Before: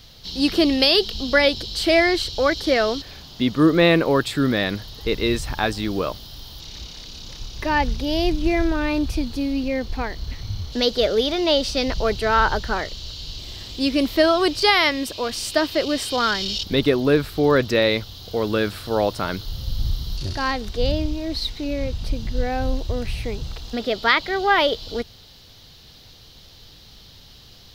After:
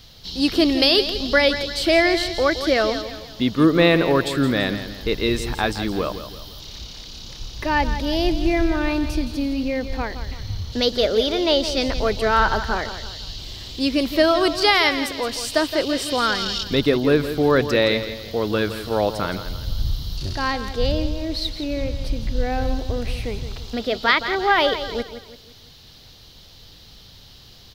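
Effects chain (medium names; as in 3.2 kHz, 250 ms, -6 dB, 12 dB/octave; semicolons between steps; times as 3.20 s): feedback delay 168 ms, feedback 41%, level -11 dB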